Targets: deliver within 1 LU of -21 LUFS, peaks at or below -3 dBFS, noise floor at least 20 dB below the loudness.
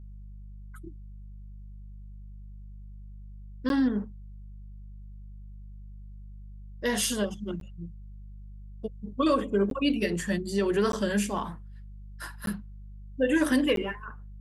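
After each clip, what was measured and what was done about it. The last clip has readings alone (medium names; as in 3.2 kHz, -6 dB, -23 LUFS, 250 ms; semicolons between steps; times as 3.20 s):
dropouts 6; longest dropout 12 ms; hum 50 Hz; highest harmonic 200 Hz; hum level -41 dBFS; loudness -28.5 LUFS; peak level -13.5 dBFS; loudness target -21.0 LUFS
-> interpolate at 3.69/7.60/9.70/10.92/12.46/13.76 s, 12 ms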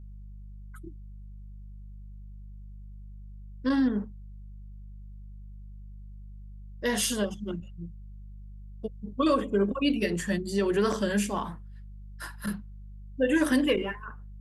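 dropouts 0; hum 50 Hz; highest harmonic 200 Hz; hum level -41 dBFS
-> de-hum 50 Hz, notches 4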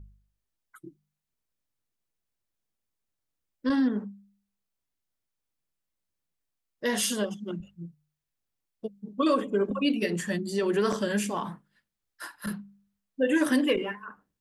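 hum not found; loudness -28.5 LUFS; peak level -13.5 dBFS; loudness target -21.0 LUFS
-> trim +7.5 dB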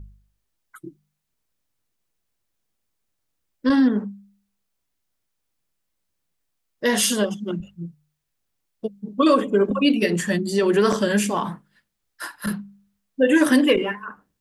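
loudness -21.0 LUFS; peak level -6.0 dBFS; noise floor -77 dBFS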